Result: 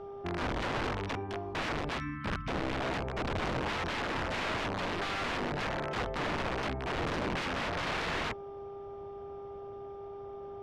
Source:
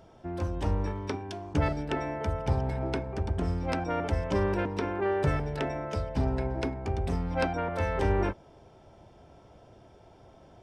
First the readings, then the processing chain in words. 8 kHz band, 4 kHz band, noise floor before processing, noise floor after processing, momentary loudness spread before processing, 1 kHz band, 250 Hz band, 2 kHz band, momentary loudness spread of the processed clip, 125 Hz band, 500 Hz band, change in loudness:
+3.0 dB, +7.5 dB, -56 dBFS, -44 dBFS, 6 LU, -0.5 dB, -4.5 dB, +4.0 dB, 11 LU, -9.0 dB, -5.0 dB, -4.0 dB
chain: mains buzz 400 Hz, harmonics 3, -44 dBFS -9 dB/octave; spectral selection erased 1.98–2.72 s, 320–1000 Hz; integer overflow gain 27.5 dB; low-pass 3.3 kHz 12 dB/octave

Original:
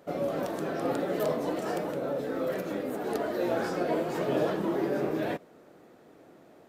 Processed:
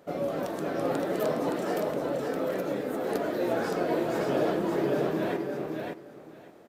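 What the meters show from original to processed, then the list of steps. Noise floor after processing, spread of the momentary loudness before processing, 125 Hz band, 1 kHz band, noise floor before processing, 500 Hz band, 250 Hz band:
-49 dBFS, 4 LU, +1.5 dB, +1.5 dB, -56 dBFS, +1.5 dB, +1.5 dB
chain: feedback delay 568 ms, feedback 17%, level -4 dB

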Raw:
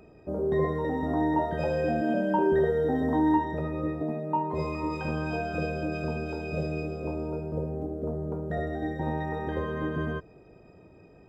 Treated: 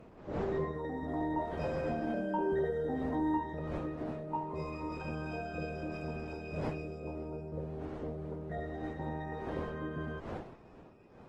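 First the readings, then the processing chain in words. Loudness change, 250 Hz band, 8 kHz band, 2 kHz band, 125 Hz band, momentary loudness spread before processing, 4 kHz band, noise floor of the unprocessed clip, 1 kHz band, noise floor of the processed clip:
-8.5 dB, -8.5 dB, no reading, -8.0 dB, -8.0 dB, 9 LU, -7.5 dB, -54 dBFS, -8.0 dB, -55 dBFS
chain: wind noise 590 Hz -39 dBFS; trim -8.5 dB; Opus 16 kbps 48 kHz

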